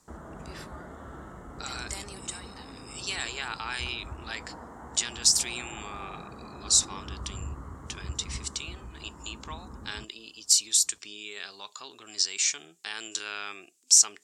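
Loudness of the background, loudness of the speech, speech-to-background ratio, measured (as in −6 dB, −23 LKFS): −44.0 LKFS, −27.0 LKFS, 17.0 dB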